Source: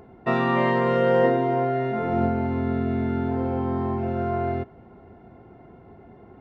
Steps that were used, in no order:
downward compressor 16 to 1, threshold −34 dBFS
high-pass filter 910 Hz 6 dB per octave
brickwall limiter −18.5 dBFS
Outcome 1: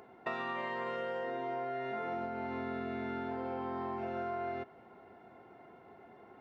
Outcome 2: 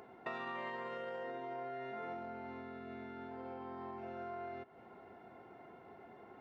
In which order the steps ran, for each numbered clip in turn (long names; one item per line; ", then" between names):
high-pass filter, then brickwall limiter, then downward compressor
brickwall limiter, then downward compressor, then high-pass filter